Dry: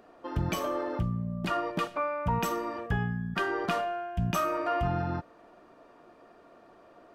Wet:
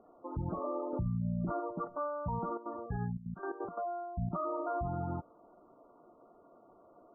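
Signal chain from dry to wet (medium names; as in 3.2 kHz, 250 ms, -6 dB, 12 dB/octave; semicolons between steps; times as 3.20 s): low-pass 1.3 kHz 24 dB/octave; spectral gate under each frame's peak -20 dB strong; 0.93–1.60 s: tilt shelf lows +7 dB, about 930 Hz; peak limiter -22.5 dBFS, peak gain reduction 9 dB; 2.49–4.30 s: trance gate ".x.x.xxxxxx.x" 175 bpm -12 dB; trim -4.5 dB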